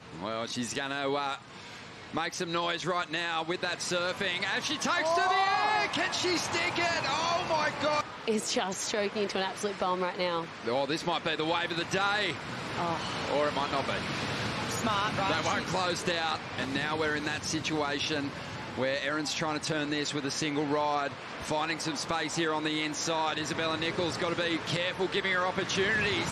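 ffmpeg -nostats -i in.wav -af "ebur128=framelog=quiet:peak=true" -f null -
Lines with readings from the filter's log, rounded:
Integrated loudness:
  I:         -30.1 LUFS
  Threshold: -40.1 LUFS
Loudness range:
  LRA:         3.4 LU
  Threshold: -50.1 LUFS
  LRA low:   -31.2 LUFS
  LRA high:  -27.8 LUFS
True peak:
  Peak:      -14.8 dBFS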